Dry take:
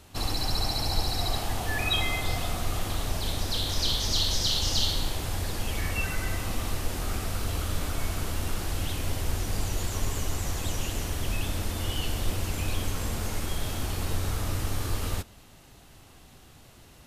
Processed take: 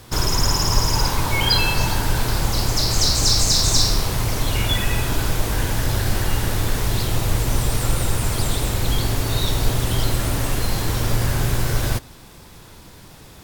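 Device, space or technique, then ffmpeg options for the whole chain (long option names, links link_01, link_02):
nightcore: -af "asetrate=56007,aresample=44100,volume=9dB"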